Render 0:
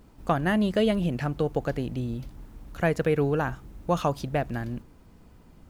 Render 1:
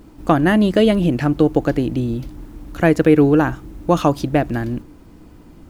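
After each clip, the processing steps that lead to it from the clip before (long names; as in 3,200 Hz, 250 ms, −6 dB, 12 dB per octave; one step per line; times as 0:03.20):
parametric band 310 Hz +11.5 dB 0.33 octaves
level +8 dB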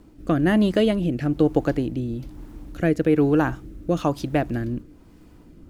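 rotating-speaker cabinet horn 1.1 Hz
level −3.5 dB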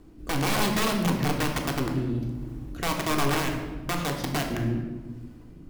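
downward compressor 3 to 1, threshold −22 dBFS, peak gain reduction 7 dB
wrap-around overflow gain 19 dB
on a send at −1.5 dB: convolution reverb RT60 1.3 s, pre-delay 3 ms
on the sum: level −3 dB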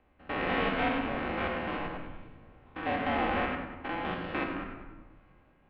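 spectrum averaged block by block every 100 ms
single-sideband voice off tune −380 Hz 550–3,200 Hz
rectangular room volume 2,700 cubic metres, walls furnished, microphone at 2.1 metres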